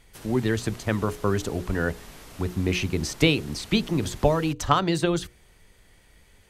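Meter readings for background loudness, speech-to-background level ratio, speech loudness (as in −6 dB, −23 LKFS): −45.5 LKFS, 20.0 dB, −25.5 LKFS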